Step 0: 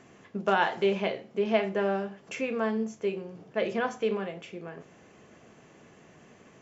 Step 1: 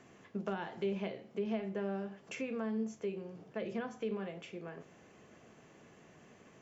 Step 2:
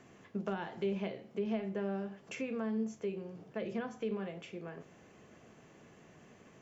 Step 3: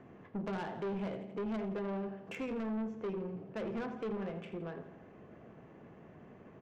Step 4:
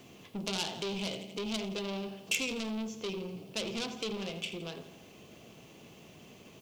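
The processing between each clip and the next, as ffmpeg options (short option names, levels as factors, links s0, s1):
-filter_complex "[0:a]acrossover=split=320[s0][s1];[s1]acompressor=threshold=0.0158:ratio=5[s2];[s0][s2]amix=inputs=2:normalize=0,volume=0.596"
-af "lowshelf=f=190:g=3"
-af "adynamicsmooth=sensitivity=7:basefreq=1600,aecho=1:1:83|166|249|332|415|498:0.224|0.132|0.0779|0.046|0.0271|0.016,asoftclip=type=tanh:threshold=0.0126,volume=1.68"
-af "aexciter=amount=9.4:drive=8.7:freq=2700"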